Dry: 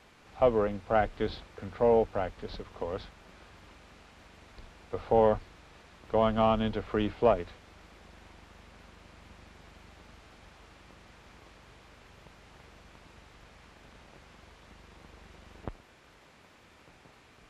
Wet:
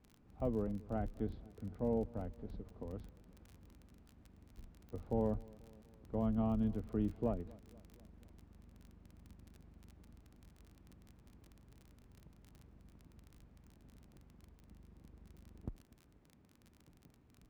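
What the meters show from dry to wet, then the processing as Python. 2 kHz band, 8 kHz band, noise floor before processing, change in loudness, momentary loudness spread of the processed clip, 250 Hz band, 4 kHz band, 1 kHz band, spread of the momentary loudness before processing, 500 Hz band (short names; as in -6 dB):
under -20 dB, n/a, -58 dBFS, -11.0 dB, 16 LU, -3.5 dB, under -20 dB, -18.0 dB, 18 LU, -14.0 dB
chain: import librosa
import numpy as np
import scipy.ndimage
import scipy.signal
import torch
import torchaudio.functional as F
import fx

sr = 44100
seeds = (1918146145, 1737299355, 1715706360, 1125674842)

y = fx.curve_eq(x, sr, hz=(260.0, 510.0, 3300.0), db=(0, -12, -24))
y = fx.dmg_crackle(y, sr, seeds[0], per_s=28.0, level_db=-44.0)
y = fx.echo_feedback(y, sr, ms=243, feedback_pct=59, wet_db=-23)
y = y * 10.0 ** (-3.0 / 20.0)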